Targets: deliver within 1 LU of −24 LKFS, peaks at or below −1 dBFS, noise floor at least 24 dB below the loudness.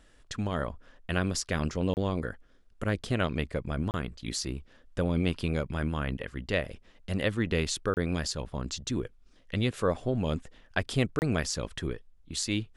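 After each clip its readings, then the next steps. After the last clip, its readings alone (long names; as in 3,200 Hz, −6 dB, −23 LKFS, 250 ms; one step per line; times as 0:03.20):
number of dropouts 4; longest dropout 29 ms; integrated loudness −31.5 LKFS; sample peak −11.5 dBFS; target loudness −24.0 LKFS
→ repair the gap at 0:01.94/0:03.91/0:07.94/0:11.19, 29 ms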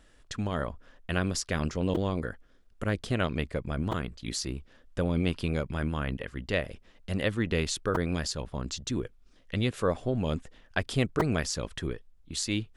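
number of dropouts 0; integrated loudness −31.5 LKFS; sample peak −11.5 dBFS; target loudness −24.0 LKFS
→ level +7.5 dB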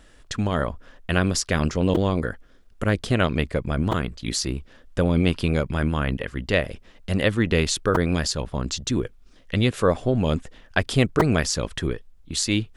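integrated loudness −24.0 LKFS; sample peak −4.0 dBFS; background noise floor −51 dBFS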